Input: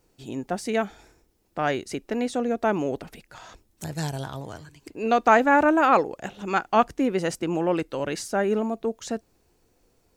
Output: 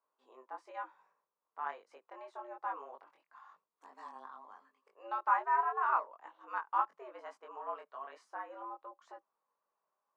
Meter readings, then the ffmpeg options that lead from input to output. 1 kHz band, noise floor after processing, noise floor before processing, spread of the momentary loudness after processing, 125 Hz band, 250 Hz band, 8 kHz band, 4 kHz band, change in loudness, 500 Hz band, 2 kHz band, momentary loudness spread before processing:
−10.0 dB, below −85 dBFS, −67 dBFS, 22 LU, below −40 dB, below −35 dB, below −35 dB, below −25 dB, −12.5 dB, −24.0 dB, −15.0 dB, 18 LU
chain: -af "flanger=delay=20:depth=2.4:speed=1.1,bandpass=frequency=980:width_type=q:width=4.9:csg=0,afreqshift=120,volume=-2dB"

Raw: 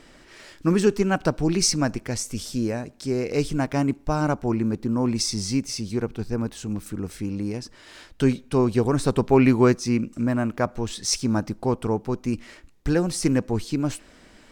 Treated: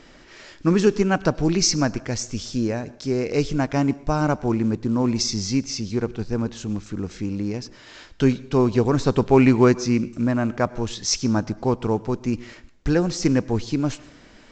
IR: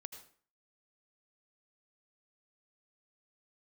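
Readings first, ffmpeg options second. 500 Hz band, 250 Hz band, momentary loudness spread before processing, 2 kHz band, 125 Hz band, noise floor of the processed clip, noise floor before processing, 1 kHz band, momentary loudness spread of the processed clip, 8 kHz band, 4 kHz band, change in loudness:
+2.0 dB, +2.0 dB, 10 LU, +2.0 dB, +2.0 dB, −49 dBFS, −52 dBFS, +2.0 dB, 10 LU, +0.5 dB, +2.0 dB, +2.0 dB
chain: -filter_complex "[0:a]asplit=2[link_01][link_02];[1:a]atrim=start_sample=2205,asetrate=35280,aresample=44100[link_03];[link_02][link_03]afir=irnorm=-1:irlink=0,volume=-8dB[link_04];[link_01][link_04]amix=inputs=2:normalize=0" -ar 16000 -c:a pcm_mulaw

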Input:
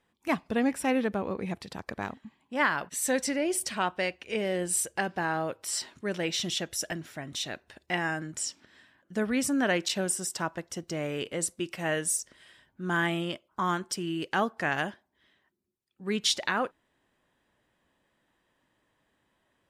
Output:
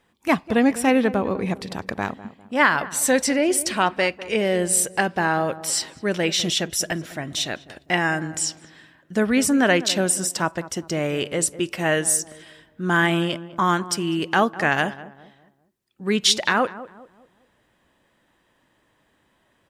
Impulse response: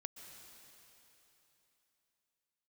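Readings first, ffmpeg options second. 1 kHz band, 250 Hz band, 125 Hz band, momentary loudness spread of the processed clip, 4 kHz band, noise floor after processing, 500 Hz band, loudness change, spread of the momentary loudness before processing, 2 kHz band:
+8.5 dB, +8.5 dB, +9.0 dB, 10 LU, +8.5 dB, −66 dBFS, +8.5 dB, +8.5 dB, 10 LU, +8.5 dB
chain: -filter_complex "[0:a]asplit=2[link_01][link_02];[link_02]adelay=201,lowpass=frequency=1100:poles=1,volume=-14.5dB,asplit=2[link_03][link_04];[link_04]adelay=201,lowpass=frequency=1100:poles=1,volume=0.41,asplit=2[link_05][link_06];[link_06]adelay=201,lowpass=frequency=1100:poles=1,volume=0.41,asplit=2[link_07][link_08];[link_08]adelay=201,lowpass=frequency=1100:poles=1,volume=0.41[link_09];[link_01][link_03][link_05][link_07][link_09]amix=inputs=5:normalize=0,volume=8.5dB"

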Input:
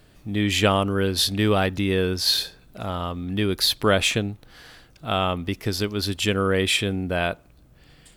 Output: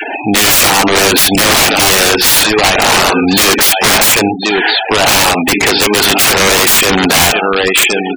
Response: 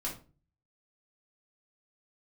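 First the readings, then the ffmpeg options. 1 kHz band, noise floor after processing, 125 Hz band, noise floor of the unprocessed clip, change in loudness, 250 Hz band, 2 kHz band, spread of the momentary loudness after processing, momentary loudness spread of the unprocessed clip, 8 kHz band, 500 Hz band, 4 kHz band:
+17.0 dB, −18 dBFS, +4.5 dB, −54 dBFS, +15.0 dB, +11.0 dB, +18.5 dB, 4 LU, 10 LU, +22.5 dB, +12.0 dB, +15.0 dB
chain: -filter_complex "[0:a]asoftclip=type=tanh:threshold=-11.5dB,aecho=1:1:1072|2144|3216:0.178|0.0676|0.0257,adynamicequalizer=threshold=0.0141:dfrequency=610:dqfactor=1.6:tfrequency=610:tqfactor=1.6:attack=5:release=100:ratio=0.375:range=3:mode=cutabove:tftype=bell,acompressor=mode=upward:threshold=-32dB:ratio=2.5,highpass=470,equalizer=frequency=560:width_type=q:width=4:gain=-5,equalizer=frequency=820:width_type=q:width=4:gain=10,equalizer=frequency=1200:width_type=q:width=4:gain=-5,equalizer=frequency=2500:width_type=q:width=4:gain=5,lowpass=frequency=3200:width=0.5412,lowpass=frequency=3200:width=1.3066,asplit=2[link_01][link_02];[1:a]atrim=start_sample=2205[link_03];[link_02][link_03]afir=irnorm=-1:irlink=0,volume=-14dB[link_04];[link_01][link_04]amix=inputs=2:normalize=0,acompressor=threshold=-28dB:ratio=2.5,aeval=exprs='(mod(33.5*val(0)+1,2)-1)/33.5':channel_layout=same,afftfilt=real='re*gte(hypot(re,im),0.00794)':imag='im*gte(hypot(re,im),0.00794)':win_size=1024:overlap=0.75,alimiter=level_in=33dB:limit=-1dB:release=50:level=0:latency=1,volume=-1dB"

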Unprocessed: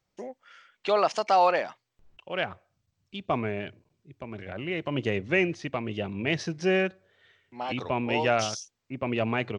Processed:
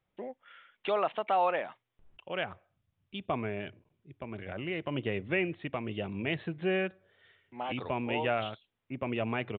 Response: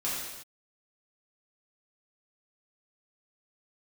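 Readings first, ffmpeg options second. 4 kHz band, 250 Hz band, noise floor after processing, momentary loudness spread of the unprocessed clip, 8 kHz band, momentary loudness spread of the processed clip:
−6.0 dB, −4.5 dB, −83 dBFS, 17 LU, below −35 dB, 14 LU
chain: -filter_complex "[0:a]asplit=2[link_01][link_02];[link_02]acompressor=threshold=-32dB:ratio=6,volume=0.5dB[link_03];[link_01][link_03]amix=inputs=2:normalize=0,aresample=8000,aresample=44100,volume=-8dB"

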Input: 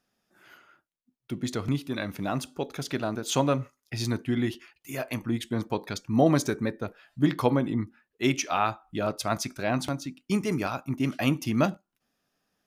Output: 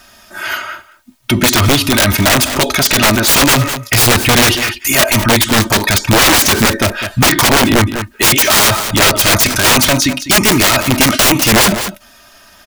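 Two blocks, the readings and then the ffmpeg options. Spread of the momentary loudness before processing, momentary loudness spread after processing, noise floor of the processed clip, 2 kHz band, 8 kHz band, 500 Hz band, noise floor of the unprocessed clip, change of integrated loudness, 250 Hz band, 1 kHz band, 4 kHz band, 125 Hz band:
10 LU, 8 LU, −44 dBFS, +24.5 dB, +27.0 dB, +13.5 dB, −82 dBFS, +19.0 dB, +12.5 dB, +17.0 dB, +26.5 dB, +15.0 dB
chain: -filter_complex "[0:a]equalizer=frequency=300:width=1.4:gain=-13.5,bandreject=frequency=520:width=12,aecho=1:1:3.2:0.81,acrossover=split=680|1200[link_01][link_02][link_03];[link_02]acompressor=threshold=-48dB:ratio=6[link_04];[link_01][link_04][link_03]amix=inputs=3:normalize=0,aeval=exprs='(mod(25.1*val(0)+1,2)-1)/25.1':channel_layout=same,asplit=2[link_05][link_06];[link_06]aecho=0:1:201:0.112[link_07];[link_05][link_07]amix=inputs=2:normalize=0,alimiter=level_in=36dB:limit=-1dB:release=50:level=0:latency=1,volume=-2.5dB"

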